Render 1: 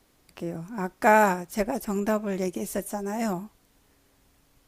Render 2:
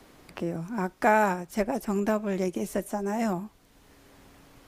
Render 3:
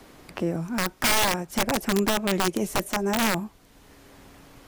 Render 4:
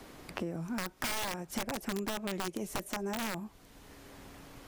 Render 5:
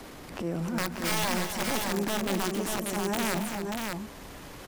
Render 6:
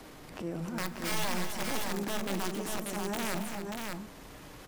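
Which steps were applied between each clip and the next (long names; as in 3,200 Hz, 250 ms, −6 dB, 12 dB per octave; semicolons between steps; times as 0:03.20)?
high-shelf EQ 6,100 Hz −6.5 dB; multiband upward and downward compressor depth 40%
wrap-around overflow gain 20 dB; level +4.5 dB
downward compressor 6 to 1, threshold −32 dBFS, peak gain reduction 12.5 dB; level −1.5 dB
transient designer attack −11 dB, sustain +4 dB; on a send: multi-tap delay 140/183/276/586 ms −20/−12.5/−9.5/−4 dB; on the sum: level +6.5 dB
convolution reverb RT60 0.55 s, pre-delay 6 ms, DRR 12.5 dB; level −5 dB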